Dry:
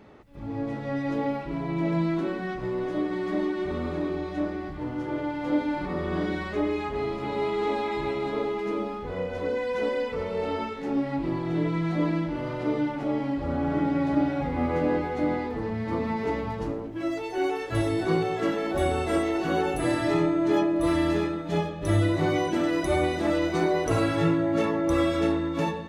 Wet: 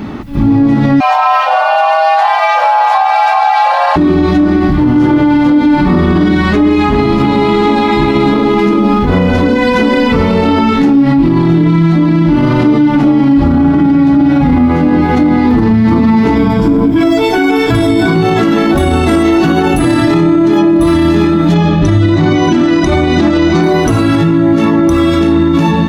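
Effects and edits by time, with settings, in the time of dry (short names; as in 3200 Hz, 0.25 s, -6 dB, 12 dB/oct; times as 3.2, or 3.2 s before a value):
1–3.96 frequency shift +470 Hz
16.35–18.15 ripple EQ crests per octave 1.7, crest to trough 11 dB
21.54–23.63 LPF 7100 Hz 24 dB/oct
whole clip: graphic EQ 250/500/2000/8000 Hz +8/-12/-4/-5 dB; compressor, threshold -28 dBFS; maximiser +30 dB; gain -1 dB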